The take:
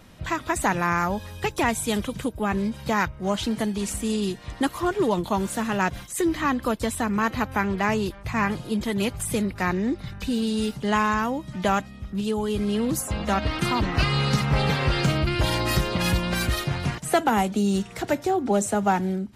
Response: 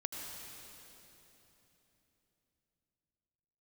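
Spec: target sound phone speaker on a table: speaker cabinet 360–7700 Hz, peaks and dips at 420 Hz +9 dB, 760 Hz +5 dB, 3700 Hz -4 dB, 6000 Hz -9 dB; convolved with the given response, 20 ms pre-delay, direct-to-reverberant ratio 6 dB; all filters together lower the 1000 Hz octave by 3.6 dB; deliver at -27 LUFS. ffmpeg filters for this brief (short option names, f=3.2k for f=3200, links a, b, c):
-filter_complex "[0:a]equalizer=f=1k:t=o:g=-9,asplit=2[a][b];[1:a]atrim=start_sample=2205,adelay=20[c];[b][c]afir=irnorm=-1:irlink=0,volume=-6.5dB[d];[a][d]amix=inputs=2:normalize=0,highpass=f=360:w=0.5412,highpass=f=360:w=1.3066,equalizer=f=420:t=q:w=4:g=9,equalizer=f=760:t=q:w=4:g=5,equalizer=f=3.7k:t=q:w=4:g=-4,equalizer=f=6k:t=q:w=4:g=-9,lowpass=f=7.7k:w=0.5412,lowpass=f=7.7k:w=1.3066,volume=-0.5dB"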